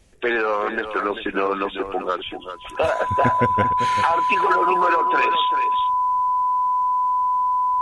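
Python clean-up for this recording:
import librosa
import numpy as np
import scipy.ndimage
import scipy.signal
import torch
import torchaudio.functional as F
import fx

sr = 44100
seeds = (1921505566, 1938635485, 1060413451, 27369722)

y = fx.notch(x, sr, hz=1000.0, q=30.0)
y = fx.fix_echo_inverse(y, sr, delay_ms=391, level_db=-10.0)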